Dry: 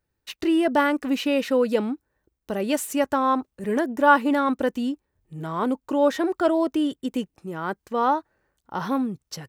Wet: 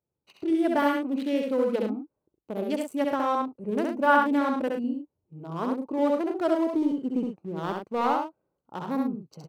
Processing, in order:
adaptive Wiener filter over 25 samples
high-pass filter 120 Hz 12 dB per octave
high-shelf EQ 10,000 Hz +4.5 dB
0:06.70–0:08.07: leveller curve on the samples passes 1
on a send: loudspeakers that aren't time-aligned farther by 23 metres −3 dB, 36 metres −8 dB
on the sum: level −5 dB

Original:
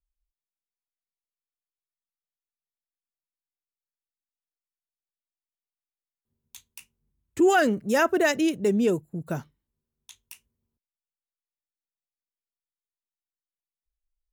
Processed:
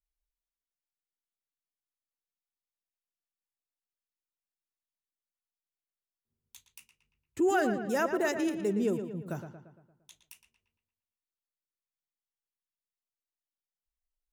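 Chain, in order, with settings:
on a send: feedback echo with a low-pass in the loop 115 ms, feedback 52%, low-pass 3,600 Hz, level −8.5 dB
on the sum: dynamic equaliser 3,200 Hz, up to −5 dB, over −41 dBFS, Q 1.1
level −7 dB

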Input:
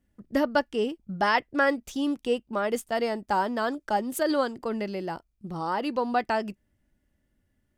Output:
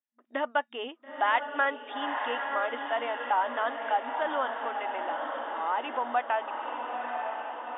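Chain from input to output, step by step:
noise gate with hold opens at −51 dBFS
low shelf with overshoot 550 Hz −10.5 dB, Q 1.5
feedback delay with all-pass diffusion 923 ms, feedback 59%, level −6.5 dB
in parallel at +0.5 dB: downward compressor, threshold −33 dBFS, peak gain reduction 15.5 dB
on the sum: brick-wall band-pass 230–3,700 Hz
level −5 dB

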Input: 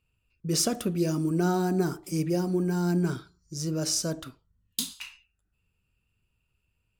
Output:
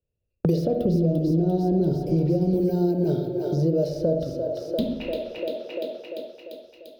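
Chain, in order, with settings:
0:00.85–0:02.54: RIAA equalisation playback
noise gate −48 dBFS, range −40 dB
drawn EQ curve 270 Hz 0 dB, 590 Hz +13 dB, 1,100 Hz −22 dB, 2,400 Hz −15 dB, 4,200 Hz −7 dB, 7,700 Hz −30 dB, 16,000 Hz −7 dB
brickwall limiter −19 dBFS, peak gain reduction 13.5 dB
echo with a time of its own for lows and highs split 360 Hz, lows 95 ms, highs 345 ms, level −10 dB
convolution reverb RT60 0.65 s, pre-delay 42 ms, DRR 6 dB
multiband upward and downward compressor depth 100%
level +2.5 dB

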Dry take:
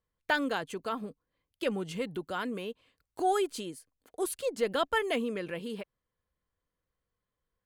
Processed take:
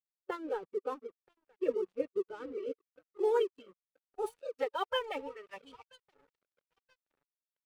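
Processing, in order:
dynamic equaliser 520 Hz, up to +4 dB, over −41 dBFS, Q 2.6
comb filter 2.6 ms, depth 85%
in parallel at −3.5 dB: floating-point word with a short mantissa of 2 bits
on the sum: parametric band 670 Hz −7.5 dB 0.54 octaves
on a send: feedback echo with a low-pass in the loop 978 ms, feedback 55%, low-pass 4,600 Hz, level −18 dB
on the sum: band-pass filter sweep 400 Hz → 870 Hz, 0:02.84–0:04.99
reverb reduction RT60 0.61 s
phase-vocoder pitch shift with formants kept +2.5 semitones
dead-zone distortion −52 dBFS
noise reduction from a noise print of the clip's start 9 dB

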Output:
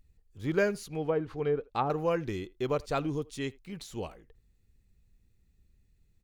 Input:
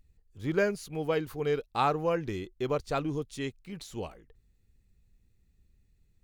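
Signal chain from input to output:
0:00.85–0:01.90: treble cut that deepens with the level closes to 580 Hz, closed at −22 dBFS
far-end echo of a speakerphone 80 ms, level −23 dB

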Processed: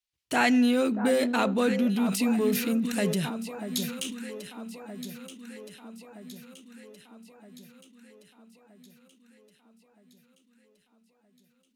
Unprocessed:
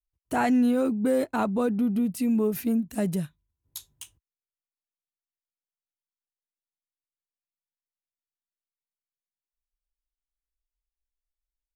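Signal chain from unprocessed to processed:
meter weighting curve D
delay that swaps between a low-pass and a high-pass 635 ms, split 1,400 Hz, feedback 74%, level −10 dB
on a send at −20 dB: convolution reverb RT60 0.85 s, pre-delay 3 ms
on the sum: level that may fall only so fast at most 57 dB per second

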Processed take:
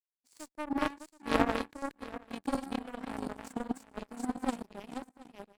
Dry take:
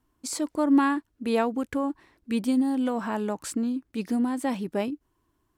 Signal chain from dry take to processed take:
feedback delay that plays each chunk backwards 364 ms, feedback 59%, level −0.5 dB
single-tap delay 114 ms −20 dB
power curve on the samples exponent 3
in parallel at −4 dB: asymmetric clip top −31.5 dBFS
on the sum: level −1.5 dB

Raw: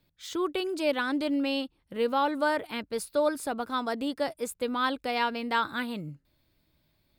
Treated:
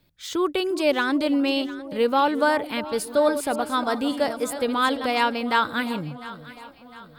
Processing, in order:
0:03.00–0:05.06: delay that plays each chunk backwards 279 ms, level −9.5 dB
delay that swaps between a low-pass and a high-pass 352 ms, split 950 Hz, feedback 68%, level −13 dB
level +6 dB

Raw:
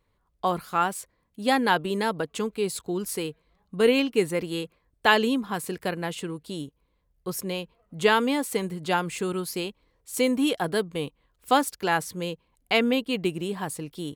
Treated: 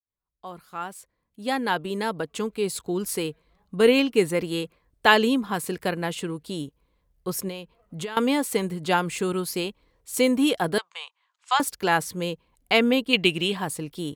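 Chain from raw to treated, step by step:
fade in at the beginning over 3.16 s
0:07.48–0:08.17: downward compressor 16 to 1, threshold −33 dBFS, peak gain reduction 18.5 dB
0:10.78–0:11.60: elliptic band-pass filter 900–7,300 Hz, stop band 50 dB
0:13.13–0:13.57: parametric band 3,000 Hz +13 dB 1.4 octaves
level +2.5 dB

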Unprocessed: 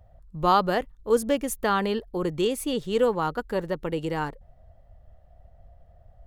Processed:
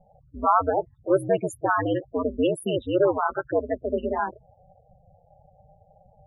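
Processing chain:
mid-hump overdrive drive 18 dB, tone 5,800 Hz, clips at −7 dBFS
spectral peaks only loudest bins 8
ring modulation 94 Hz

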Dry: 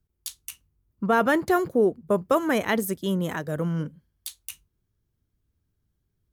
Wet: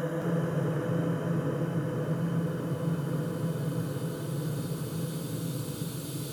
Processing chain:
peak hold with a decay on every bin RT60 1.02 s
extreme stretch with random phases 20×, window 1.00 s, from 0:03.77
delay with pitch and tempo change per echo 218 ms, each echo −3 semitones, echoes 2, each echo −6 dB
level −3 dB

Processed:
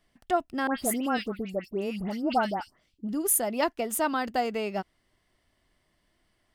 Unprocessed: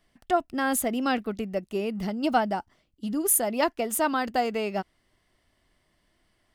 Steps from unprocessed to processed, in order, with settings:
0:00.67–0:03.09: all-pass dispersion highs, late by 115 ms, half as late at 2,200 Hz
level −2 dB

